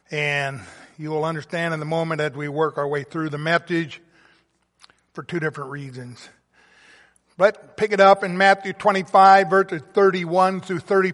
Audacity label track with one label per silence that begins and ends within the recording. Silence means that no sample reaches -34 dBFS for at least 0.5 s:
3.960000	4.840000	silence
6.250000	7.390000	silence